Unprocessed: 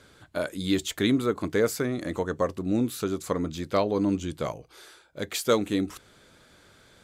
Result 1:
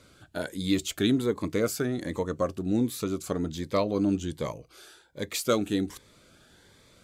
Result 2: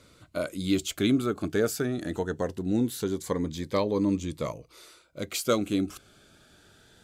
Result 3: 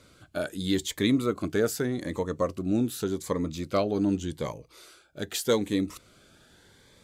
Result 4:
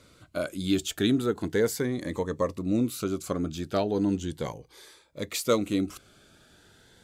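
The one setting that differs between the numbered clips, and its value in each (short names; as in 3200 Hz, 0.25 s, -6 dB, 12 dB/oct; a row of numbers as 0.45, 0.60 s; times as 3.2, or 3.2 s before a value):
cascading phaser, rate: 1.3, 0.21, 0.84, 0.37 Hz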